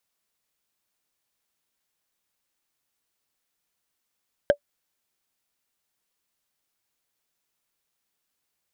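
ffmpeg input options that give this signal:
ffmpeg -f lavfi -i "aevalsrc='0.376*pow(10,-3*t/0.08)*sin(2*PI*577*t)+0.15*pow(10,-3*t/0.024)*sin(2*PI*1590.8*t)+0.0596*pow(10,-3*t/0.011)*sin(2*PI*3118.1*t)+0.0237*pow(10,-3*t/0.006)*sin(2*PI*5154.3*t)+0.00944*pow(10,-3*t/0.004)*sin(2*PI*7697.2*t)':duration=0.45:sample_rate=44100" out.wav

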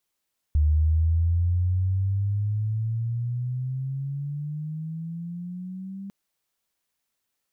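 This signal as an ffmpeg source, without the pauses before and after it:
ffmpeg -f lavfi -i "aevalsrc='pow(10,(-16.5-17*t/5.55)/20)*sin(2*PI*74.2*5.55/(17*log(2)/12)*(exp(17*log(2)/12*t/5.55)-1))':duration=5.55:sample_rate=44100" out.wav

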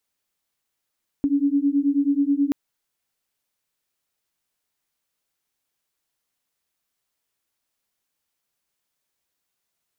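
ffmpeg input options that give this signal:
ffmpeg -f lavfi -i "aevalsrc='0.0944*(sin(2*PI*278*t)+sin(2*PI*287.3*t))':duration=1.28:sample_rate=44100" out.wav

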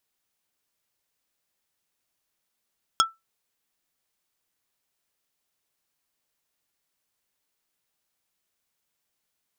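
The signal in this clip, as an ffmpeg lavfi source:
ffmpeg -f lavfi -i "aevalsrc='0.211*pow(10,-3*t/0.19)*sin(2*PI*1330*t)+0.178*pow(10,-3*t/0.063)*sin(2*PI*3325*t)+0.15*pow(10,-3*t/0.036)*sin(2*PI*5320*t)+0.126*pow(10,-3*t/0.028)*sin(2*PI*6650*t)+0.106*pow(10,-3*t/0.02)*sin(2*PI*8645*t)':duration=0.45:sample_rate=44100" out.wav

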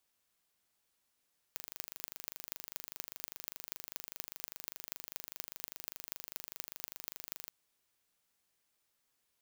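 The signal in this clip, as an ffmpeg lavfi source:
ffmpeg -f lavfi -i "aevalsrc='0.282*eq(mod(n,1764),0)*(0.5+0.5*eq(mod(n,10584),0))':duration=5.93:sample_rate=44100" out.wav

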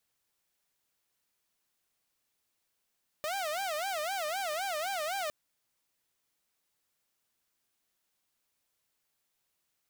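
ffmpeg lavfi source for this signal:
ffmpeg -f lavfi -i "aevalsrc='0.0335*(2*mod((698*t-99/(2*PI*3.9)*sin(2*PI*3.9*t)),1)-1)':duration=2.06:sample_rate=44100" out.wav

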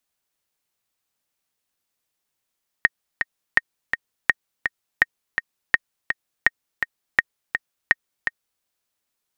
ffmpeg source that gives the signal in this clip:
ffmpeg -f lavfi -i "aevalsrc='pow(10,(-1-7*gte(mod(t,2*60/166),60/166))/20)*sin(2*PI*1860*mod(t,60/166))*exp(-6.91*mod(t,60/166)/0.03)':duration=5.78:sample_rate=44100" out.wav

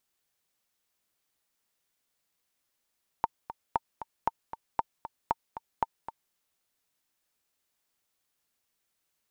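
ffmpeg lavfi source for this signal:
ffmpeg -f lavfi -i "aevalsrc='pow(10,(-12-12.5*gte(mod(t,2*60/232),60/232))/20)*sin(2*PI*911*mod(t,60/232))*exp(-6.91*mod(t,60/232)/0.03)':duration=3.1:sample_rate=44100" out.wav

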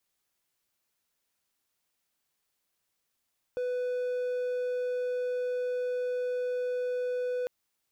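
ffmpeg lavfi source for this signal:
ffmpeg -f lavfi -i "aevalsrc='0.0473*(1-4*abs(mod(497*t+0.25,1)-0.5))':duration=3.9:sample_rate=44100" out.wav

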